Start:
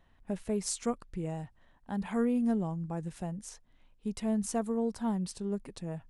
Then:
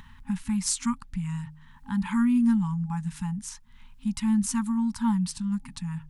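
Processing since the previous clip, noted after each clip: FFT band-reject 260–820 Hz; de-hum 153.4 Hz, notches 3; upward compressor, threshold -47 dBFS; gain +7.5 dB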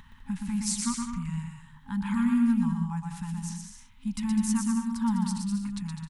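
bouncing-ball echo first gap 0.12 s, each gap 0.7×, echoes 5; gain -3.5 dB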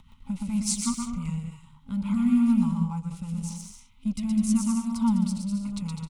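rotary speaker horn 6.7 Hz, later 0.9 Hz, at 0.77; in parallel at -4 dB: crossover distortion -45.5 dBFS; on the sum: Butterworth band-stop 1700 Hz, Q 2.7

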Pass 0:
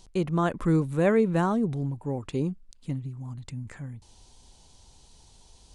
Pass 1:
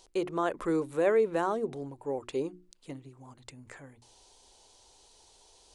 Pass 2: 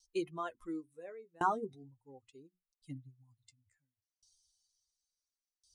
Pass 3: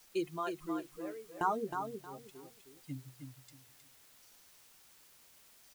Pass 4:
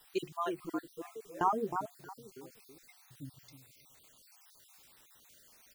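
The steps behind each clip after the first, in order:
resonant low shelf 270 Hz -12.5 dB, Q 1.5; notches 60/120/180/240/300/360 Hz; in parallel at -0.5 dB: limiter -20 dBFS, peak gain reduction 10 dB; on the sum: gain -7 dB
per-bin expansion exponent 2; flange 0.38 Hz, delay 5.2 ms, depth 7.4 ms, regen +29%; dB-ramp tremolo decaying 0.71 Hz, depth 32 dB; gain +8 dB
in parallel at -1.5 dB: limiter -30.5 dBFS, peak gain reduction 11.5 dB; on the sum: requantised 10-bit, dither triangular; feedback echo 0.314 s, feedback 23%, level -6.5 dB; gain -3 dB
random spectral dropouts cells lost 44%; gain +3 dB

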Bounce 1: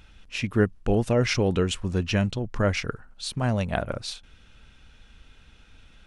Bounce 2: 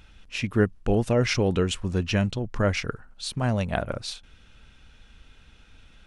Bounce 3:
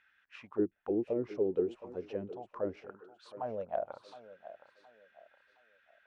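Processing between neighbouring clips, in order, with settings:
nothing audible
auto-wah 330–1800 Hz, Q 6.2, down, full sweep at -17.5 dBFS; thinning echo 0.717 s, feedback 36%, high-pass 230 Hz, level -14 dB

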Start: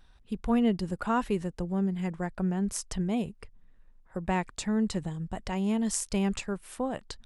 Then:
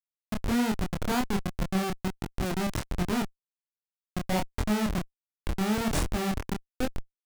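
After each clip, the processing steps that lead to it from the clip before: Schmitt trigger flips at -26.5 dBFS; chorus 1.3 Hz, depth 6.1 ms; gain +8 dB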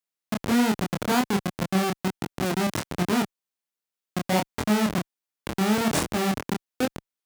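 HPF 150 Hz 12 dB/oct; gain +5.5 dB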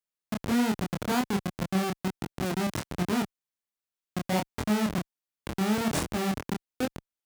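low shelf 110 Hz +7 dB; gain -5 dB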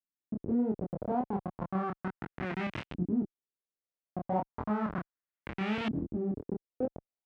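LFO low-pass saw up 0.34 Hz 260–3000 Hz; gain -6.5 dB

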